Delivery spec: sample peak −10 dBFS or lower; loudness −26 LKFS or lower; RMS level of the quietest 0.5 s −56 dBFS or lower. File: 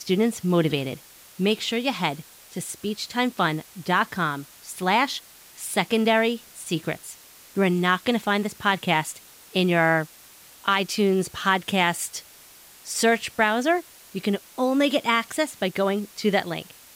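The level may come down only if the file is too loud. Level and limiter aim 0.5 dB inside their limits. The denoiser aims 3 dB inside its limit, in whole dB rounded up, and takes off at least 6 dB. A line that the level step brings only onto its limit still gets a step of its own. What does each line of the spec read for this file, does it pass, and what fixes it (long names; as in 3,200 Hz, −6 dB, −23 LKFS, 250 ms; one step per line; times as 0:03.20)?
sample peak −8.0 dBFS: out of spec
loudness −24.0 LKFS: out of spec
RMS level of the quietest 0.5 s −49 dBFS: out of spec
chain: broadband denoise 8 dB, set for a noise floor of −49 dBFS
level −2.5 dB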